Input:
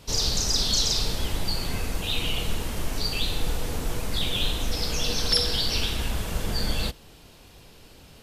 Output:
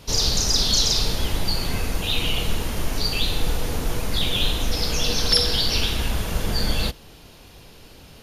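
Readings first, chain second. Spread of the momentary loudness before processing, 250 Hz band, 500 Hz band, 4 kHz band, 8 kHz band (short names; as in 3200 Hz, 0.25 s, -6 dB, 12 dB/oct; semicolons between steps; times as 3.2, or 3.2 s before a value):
9 LU, +4.0 dB, +4.0 dB, +4.0 dB, +3.5 dB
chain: notch 7900 Hz, Q 7.8; gain +4 dB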